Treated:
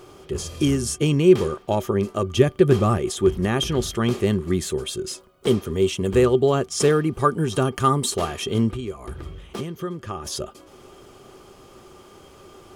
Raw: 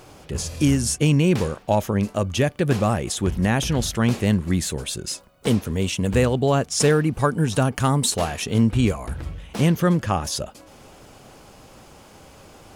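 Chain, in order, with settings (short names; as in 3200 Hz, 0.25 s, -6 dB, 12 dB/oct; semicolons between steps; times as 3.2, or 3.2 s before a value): 2.34–2.98 low shelf 180 Hz +8 dB; 8.7–10.26 compressor 12:1, threshold -26 dBFS, peak gain reduction 13 dB; small resonant body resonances 380/1200/3200 Hz, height 16 dB, ringing for 85 ms; gain -3.5 dB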